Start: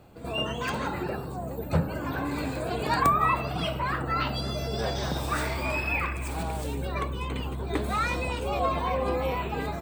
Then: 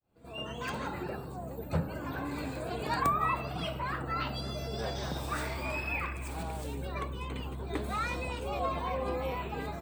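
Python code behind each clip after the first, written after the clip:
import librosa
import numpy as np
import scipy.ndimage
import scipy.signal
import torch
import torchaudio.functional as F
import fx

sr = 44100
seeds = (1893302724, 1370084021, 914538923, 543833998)

y = fx.fade_in_head(x, sr, length_s=0.65)
y = F.gain(torch.from_numpy(y), -6.0).numpy()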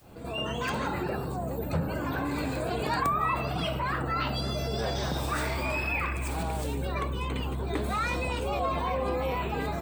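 y = fx.env_flatten(x, sr, amount_pct=50)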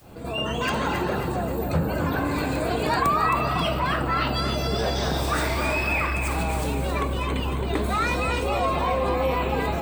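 y = fx.echo_feedback(x, sr, ms=268, feedback_pct=43, wet_db=-7.0)
y = F.gain(torch.from_numpy(y), 5.0).numpy()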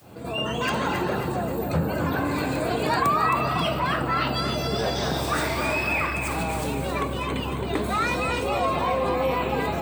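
y = scipy.signal.sosfilt(scipy.signal.butter(4, 79.0, 'highpass', fs=sr, output='sos'), x)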